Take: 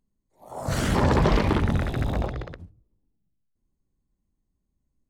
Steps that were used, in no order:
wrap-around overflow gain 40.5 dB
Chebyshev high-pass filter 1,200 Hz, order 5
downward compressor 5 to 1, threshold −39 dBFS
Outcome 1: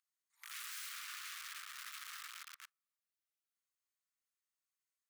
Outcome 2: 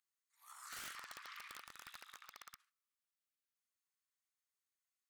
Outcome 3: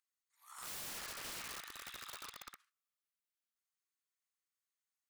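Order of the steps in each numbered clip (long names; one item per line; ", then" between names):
downward compressor, then wrap-around overflow, then Chebyshev high-pass filter
downward compressor, then Chebyshev high-pass filter, then wrap-around overflow
Chebyshev high-pass filter, then downward compressor, then wrap-around overflow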